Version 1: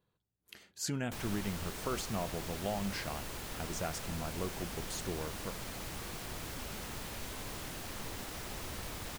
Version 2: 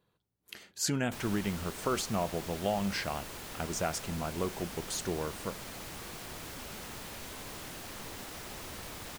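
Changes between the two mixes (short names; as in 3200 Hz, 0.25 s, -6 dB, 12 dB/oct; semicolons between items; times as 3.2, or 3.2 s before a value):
speech +6.0 dB; master: add low shelf 110 Hz -6.5 dB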